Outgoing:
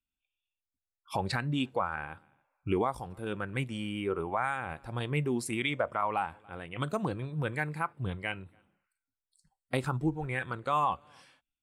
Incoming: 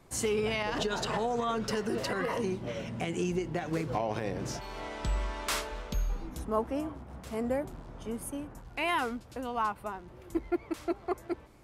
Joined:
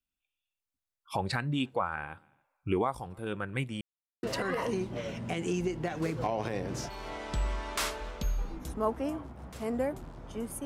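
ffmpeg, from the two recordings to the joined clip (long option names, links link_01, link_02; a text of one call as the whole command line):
ffmpeg -i cue0.wav -i cue1.wav -filter_complex "[0:a]apad=whole_dur=10.65,atrim=end=10.65,asplit=2[link_01][link_02];[link_01]atrim=end=3.81,asetpts=PTS-STARTPTS,afade=type=out:start_time=3.806:duration=0.004:curve=hsin[link_03];[link_02]atrim=start=3.81:end=4.23,asetpts=PTS-STARTPTS,volume=0[link_04];[1:a]atrim=start=1.94:end=8.36,asetpts=PTS-STARTPTS,afade=type=in:duration=0.004:curve=hsin[link_05];[link_03][link_04][link_05]concat=n=3:v=0:a=1" out.wav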